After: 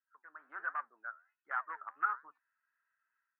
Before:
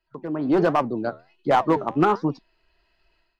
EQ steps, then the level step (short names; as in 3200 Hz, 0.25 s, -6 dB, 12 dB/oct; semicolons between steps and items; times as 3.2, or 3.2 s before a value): Butterworth band-pass 1500 Hz, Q 3; air absorption 290 m; -3.0 dB